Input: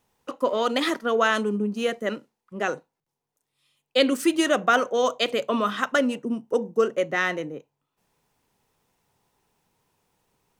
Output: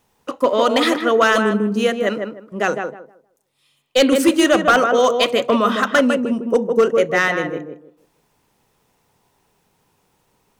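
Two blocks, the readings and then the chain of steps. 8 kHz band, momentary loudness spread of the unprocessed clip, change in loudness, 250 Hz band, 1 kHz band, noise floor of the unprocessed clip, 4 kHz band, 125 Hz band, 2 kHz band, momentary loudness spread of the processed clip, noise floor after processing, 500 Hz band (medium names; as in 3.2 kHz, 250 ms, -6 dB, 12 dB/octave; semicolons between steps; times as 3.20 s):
+7.5 dB, 11 LU, +7.5 dB, +8.0 dB, +7.0 dB, -83 dBFS, +6.0 dB, +8.0 dB, +7.0 dB, 12 LU, -65 dBFS, +8.0 dB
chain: tape echo 155 ms, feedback 26%, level -4 dB, low-pass 1.3 kHz; hard clipper -13.5 dBFS, distortion -19 dB; trim +7 dB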